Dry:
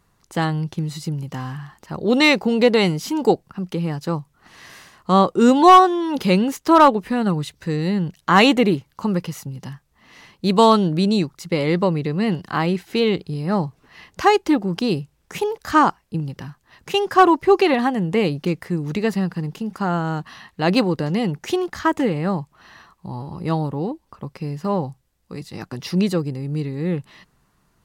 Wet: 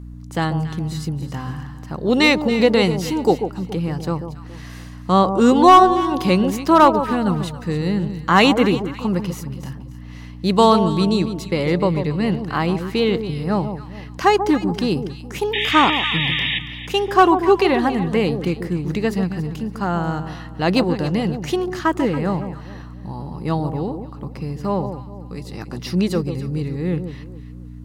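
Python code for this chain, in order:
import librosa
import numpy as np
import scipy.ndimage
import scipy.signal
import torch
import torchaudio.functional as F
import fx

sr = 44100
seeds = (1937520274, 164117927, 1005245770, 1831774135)

y = fx.spec_paint(x, sr, seeds[0], shape='noise', start_s=15.53, length_s=1.06, low_hz=1700.0, high_hz=3800.0, level_db=-22.0)
y = fx.add_hum(y, sr, base_hz=60, snr_db=15)
y = fx.echo_alternate(y, sr, ms=140, hz=1000.0, feedback_pct=55, wet_db=-8)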